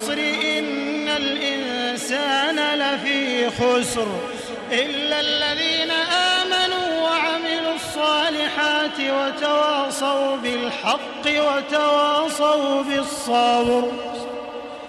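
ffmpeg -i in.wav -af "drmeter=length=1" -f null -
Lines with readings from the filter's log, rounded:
Channel 1: DR: 8.1
Overall DR: 8.1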